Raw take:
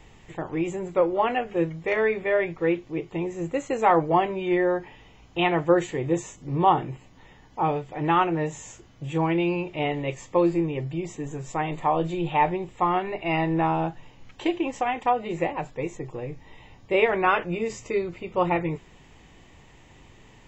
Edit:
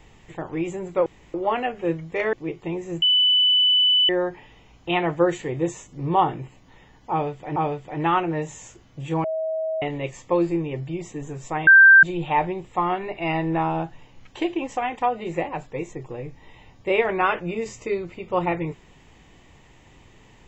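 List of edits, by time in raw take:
1.06 s: insert room tone 0.28 s
2.05–2.82 s: delete
3.51–4.58 s: bleep 2.99 kHz -14.5 dBFS
7.60–8.05 s: loop, 2 plays
9.28–9.86 s: bleep 639 Hz -23 dBFS
11.71–12.07 s: bleep 1.57 kHz -7 dBFS

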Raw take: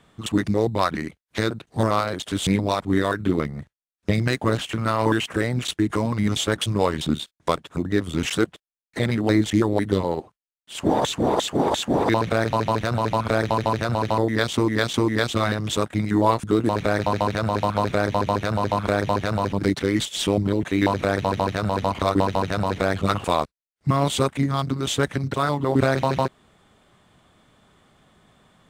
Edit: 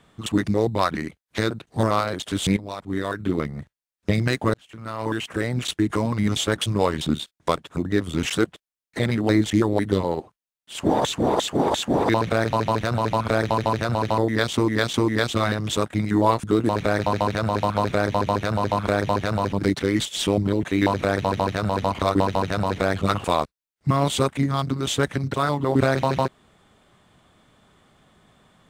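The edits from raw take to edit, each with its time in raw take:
2.57–3.59 s: fade in, from -14.5 dB
4.54–5.65 s: fade in

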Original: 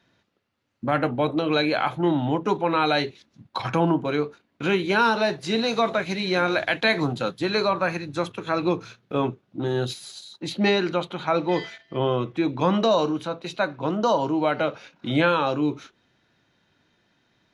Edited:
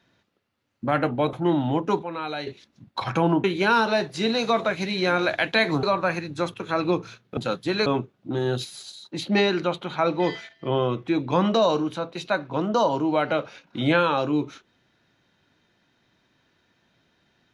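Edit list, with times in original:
1.33–1.91 s: delete
2.60–3.05 s: gain -9.5 dB
4.02–4.73 s: delete
7.12–7.61 s: move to 9.15 s

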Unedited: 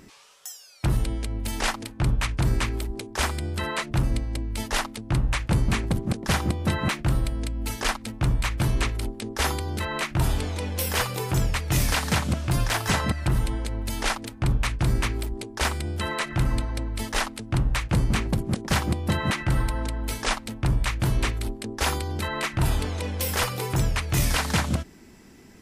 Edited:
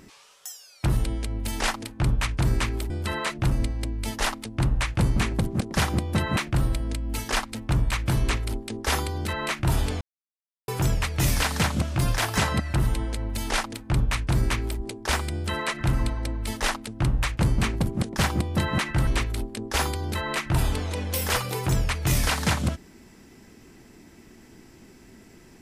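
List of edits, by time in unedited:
2.90–3.42 s: delete
10.53–11.20 s: mute
19.59–21.14 s: delete

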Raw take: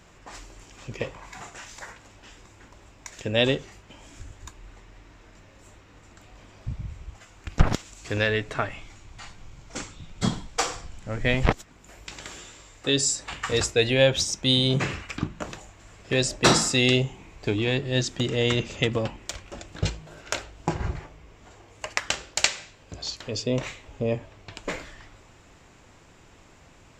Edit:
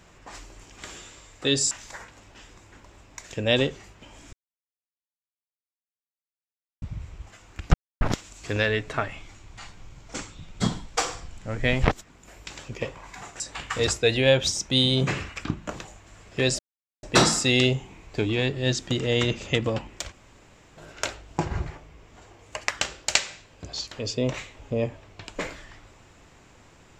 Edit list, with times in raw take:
0.82–1.59 s: swap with 12.24–13.13 s
4.21–6.70 s: mute
7.62 s: insert silence 0.27 s
16.32 s: insert silence 0.44 s
19.41–20.06 s: room tone

